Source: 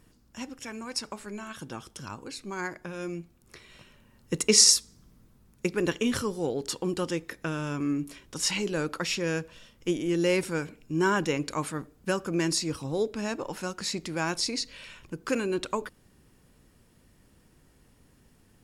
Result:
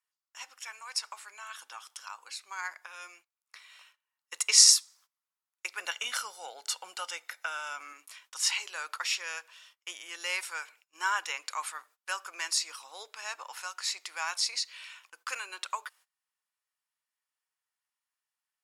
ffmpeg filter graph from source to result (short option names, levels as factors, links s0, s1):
-filter_complex "[0:a]asettb=1/sr,asplit=3[s0][s1][s2];[s0]atrim=end=5.804[s3];[s1]atrim=start=5.8:end=7.93,asetpts=PTS-STARTPTS,afade=t=in:d=0.004:c=qsin,afade=t=out:st=2.126:d=0.004:c=qsin,lowshelf=f=330:g=11.5,aecho=1:1:1.4:0.5,atrim=end_sample=93933[s4];[s2]atrim=start=7.926[s5];[s3][s4]acrossfade=d=0.004:c1=hsin:c2=qsin[s6];[s6][s5]acrossfade=d=0.004:c1=qsin:c2=hsin,highpass=f=930:w=0.5412,highpass=f=930:w=1.3066,agate=range=0.0794:threshold=0.00126:ratio=16:detection=peak,bandreject=f=1600:w=28"